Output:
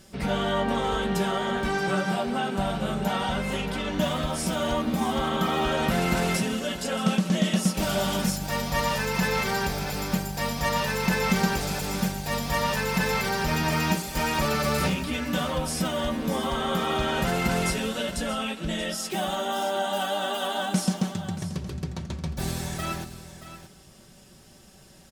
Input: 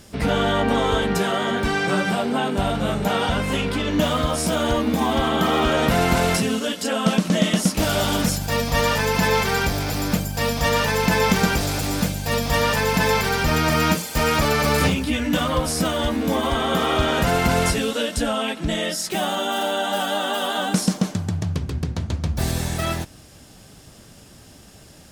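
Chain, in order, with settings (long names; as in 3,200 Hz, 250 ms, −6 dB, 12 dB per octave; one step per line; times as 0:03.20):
comb filter 5.3 ms, depth 52%
single-tap delay 629 ms −13 dB
on a send at −14.5 dB: convolution reverb RT60 1.3 s, pre-delay 6 ms
on the sum: level −7 dB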